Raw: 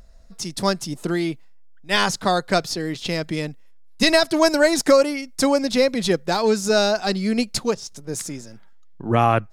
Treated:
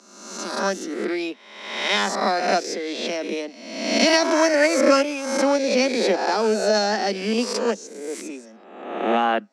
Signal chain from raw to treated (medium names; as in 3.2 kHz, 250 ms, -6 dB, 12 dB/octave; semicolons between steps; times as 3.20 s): reverse spectral sustain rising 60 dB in 0.99 s; dynamic bell 1.1 kHz, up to -5 dB, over -35 dBFS, Q 3.4; formant shift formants +2 st; steep high-pass 200 Hz 96 dB/octave; short-mantissa float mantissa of 6-bit; distance through air 87 m; trim -2 dB